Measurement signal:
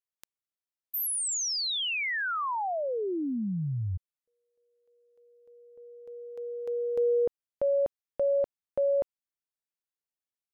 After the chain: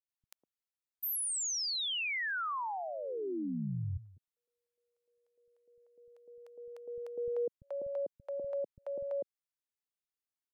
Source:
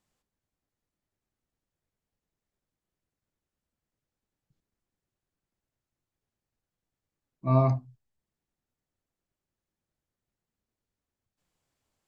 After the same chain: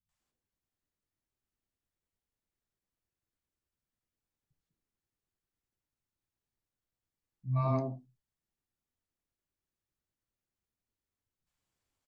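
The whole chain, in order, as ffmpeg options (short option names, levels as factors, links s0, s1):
-filter_complex "[0:a]acrossover=split=170|610[s0][s1][s2];[s2]adelay=90[s3];[s1]adelay=200[s4];[s0][s4][s3]amix=inputs=3:normalize=0,volume=0.596"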